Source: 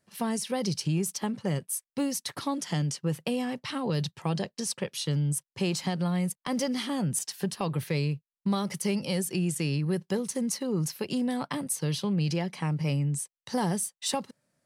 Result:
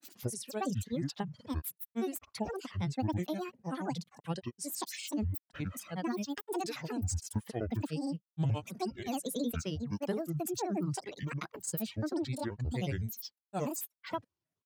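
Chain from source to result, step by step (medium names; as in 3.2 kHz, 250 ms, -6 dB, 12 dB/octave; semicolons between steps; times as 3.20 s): dynamic bell 4.6 kHz, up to -5 dB, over -46 dBFS, Q 0.81; reverb removal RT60 1.2 s; granulator, grains 19 per s, pitch spread up and down by 12 st; trim -3.5 dB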